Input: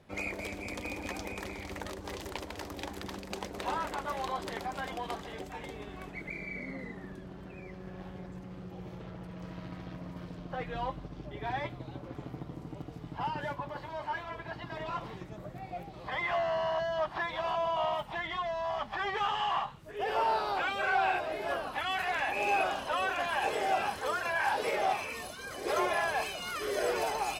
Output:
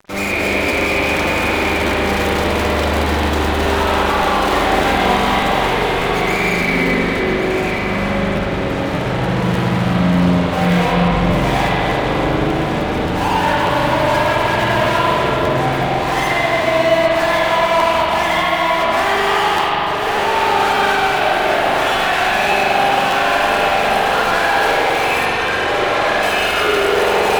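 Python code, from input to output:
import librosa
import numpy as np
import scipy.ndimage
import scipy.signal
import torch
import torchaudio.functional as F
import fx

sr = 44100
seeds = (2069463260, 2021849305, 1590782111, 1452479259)

y = fx.low_shelf(x, sr, hz=140.0, db=-6.5)
y = fx.rider(y, sr, range_db=4, speed_s=2.0)
y = fx.fuzz(y, sr, gain_db=49.0, gate_db=-52.0)
y = fx.doubler(y, sr, ms=29.0, db=-4, at=(4.4, 5.36))
y = fx.air_absorb(y, sr, metres=51.0, at=(25.25, 26.23))
y = y + 10.0 ** (-11.0 / 20.0) * np.pad(y, (int(1118 * sr / 1000.0), 0))[:len(y)]
y = fx.rev_spring(y, sr, rt60_s=3.5, pass_ms=(40, 45), chirp_ms=25, drr_db=-9.0)
y = fx.buffer_crackle(y, sr, first_s=0.68, period_s=0.59, block=512, kind='repeat')
y = F.gain(torch.from_numpy(y), -10.5).numpy()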